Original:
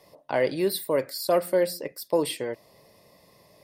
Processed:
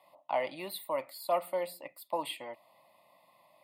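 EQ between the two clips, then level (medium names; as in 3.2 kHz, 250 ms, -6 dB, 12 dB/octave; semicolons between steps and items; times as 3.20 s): high-pass 600 Hz 12 dB/octave; tilt EQ -2.5 dB/octave; static phaser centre 1.6 kHz, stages 6; 0.0 dB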